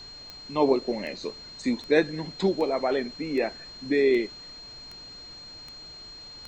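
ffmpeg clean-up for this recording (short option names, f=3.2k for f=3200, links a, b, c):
-af "adeclick=t=4,bandreject=f=4.2k:w=30,afftdn=nr=26:nf=-44"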